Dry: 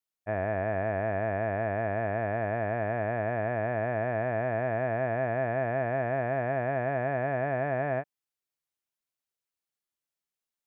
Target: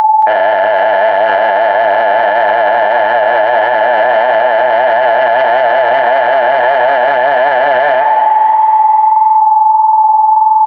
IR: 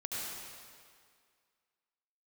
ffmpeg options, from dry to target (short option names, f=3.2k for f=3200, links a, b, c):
-filter_complex "[0:a]equalizer=f=970:t=o:w=2.5:g=4.5,asoftclip=type=tanh:threshold=-22dB,asplit=2[a][b];[1:a]atrim=start_sample=2205,adelay=53[c];[b][c]afir=irnorm=-1:irlink=0,volume=-18.5dB[d];[a][d]amix=inputs=2:normalize=0,aeval=exprs='val(0)+0.0178*sin(2*PI*870*n/s)':c=same,asplit=6[e][f][g][h][i][j];[f]adelay=273,afreqshift=65,volume=-22dB[k];[g]adelay=546,afreqshift=130,volume=-26dB[l];[h]adelay=819,afreqshift=195,volume=-30dB[m];[i]adelay=1092,afreqshift=260,volume=-34dB[n];[j]adelay=1365,afreqshift=325,volume=-38.1dB[o];[e][k][l][m][n][o]amix=inputs=6:normalize=0,flanger=delay=9:depth=7.5:regen=-40:speed=1.6:shape=triangular,highpass=680,lowpass=2.2k,aemphasis=mode=production:type=75kf,acompressor=mode=upward:threshold=-37dB:ratio=2.5,aecho=1:1:224:0.1,alimiter=level_in=35dB:limit=-1dB:release=50:level=0:latency=1,volume=-1dB"